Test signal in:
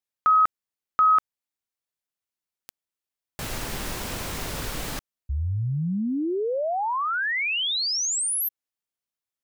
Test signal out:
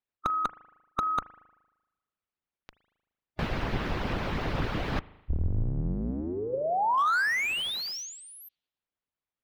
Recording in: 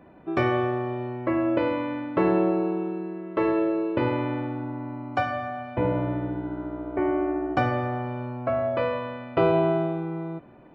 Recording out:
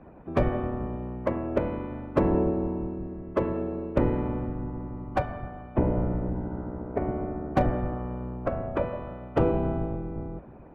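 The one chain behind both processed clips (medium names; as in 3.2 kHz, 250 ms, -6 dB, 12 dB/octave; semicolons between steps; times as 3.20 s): octave divider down 2 oct, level -3 dB; spring tank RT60 1.1 s, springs 38 ms, chirp 80 ms, DRR 16 dB; harmonic-percussive split harmonic -18 dB; distance through air 320 m; slew-rate limiter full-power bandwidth 37 Hz; trim +8 dB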